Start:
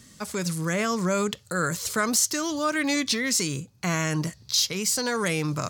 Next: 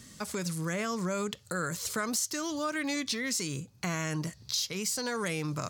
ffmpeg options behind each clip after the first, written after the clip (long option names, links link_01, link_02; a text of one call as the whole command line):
ffmpeg -i in.wav -af "acompressor=threshold=-35dB:ratio=2" out.wav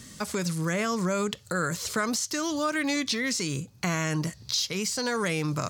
ffmpeg -i in.wav -filter_complex "[0:a]acrossover=split=6700[link_01][link_02];[link_02]acompressor=threshold=-43dB:ratio=4:attack=1:release=60[link_03];[link_01][link_03]amix=inputs=2:normalize=0,volume=5dB" out.wav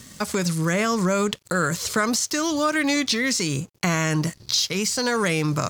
ffmpeg -i in.wav -af "aeval=exprs='sgn(val(0))*max(abs(val(0))-0.00251,0)':channel_layout=same,volume=6dB" out.wav